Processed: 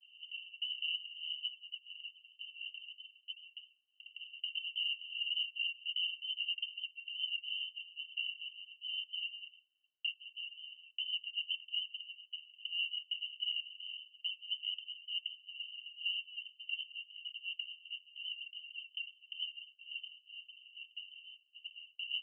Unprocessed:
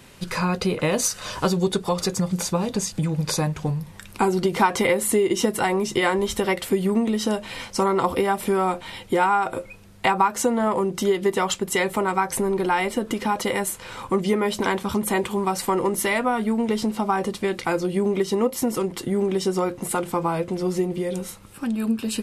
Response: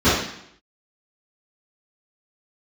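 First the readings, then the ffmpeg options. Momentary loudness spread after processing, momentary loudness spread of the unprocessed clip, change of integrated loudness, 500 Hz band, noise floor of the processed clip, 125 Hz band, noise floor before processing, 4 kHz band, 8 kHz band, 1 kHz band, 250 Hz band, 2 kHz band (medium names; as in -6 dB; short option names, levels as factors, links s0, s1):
13 LU, 6 LU, -16.5 dB, under -40 dB, -72 dBFS, under -40 dB, -43 dBFS, -2.0 dB, under -40 dB, under -40 dB, under -40 dB, -14.0 dB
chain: -af "asuperpass=centerf=2900:order=20:qfactor=7.9,alimiter=level_in=2.99:limit=0.0631:level=0:latency=1:release=76,volume=0.335,agate=range=0.0224:threshold=0.00112:ratio=3:detection=peak,volume=2"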